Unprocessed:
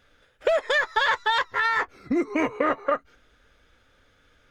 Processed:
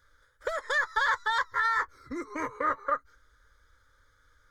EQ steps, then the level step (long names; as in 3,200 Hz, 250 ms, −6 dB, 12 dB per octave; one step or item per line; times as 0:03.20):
parametric band 370 Hz −12.5 dB 1.2 octaves
phaser with its sweep stopped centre 720 Hz, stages 6
0.0 dB